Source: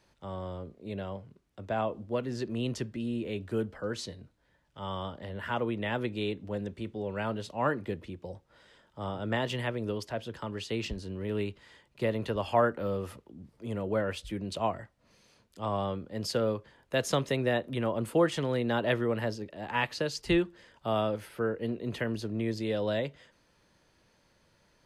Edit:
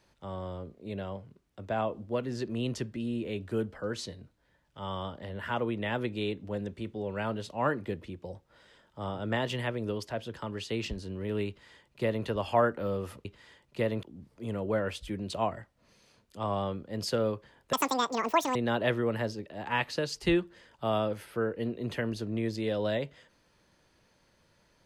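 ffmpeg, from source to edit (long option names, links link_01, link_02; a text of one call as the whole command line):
ffmpeg -i in.wav -filter_complex "[0:a]asplit=5[link_01][link_02][link_03][link_04][link_05];[link_01]atrim=end=13.252[link_06];[link_02]atrim=start=11.478:end=12.262[link_07];[link_03]atrim=start=13.248:end=16.954[link_08];[link_04]atrim=start=16.95:end=18.58,asetpts=PTS-STARTPTS,asetrate=87318,aresample=44100[link_09];[link_05]atrim=start=18.576[link_10];[link_06][link_07]acrossfade=duration=0.004:curve1=hsin:curve2=hsin[link_11];[link_11][link_08]acrossfade=duration=0.004:curve1=hsin:curve2=hsin[link_12];[link_12][link_09]acrossfade=duration=0.004:curve1=hsin:curve2=hsin[link_13];[link_13][link_10]acrossfade=duration=0.004:curve1=hsin:curve2=hsin" out.wav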